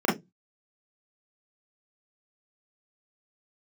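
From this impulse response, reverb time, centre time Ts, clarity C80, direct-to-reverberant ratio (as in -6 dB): 0.15 s, 39 ms, 19.0 dB, -5.5 dB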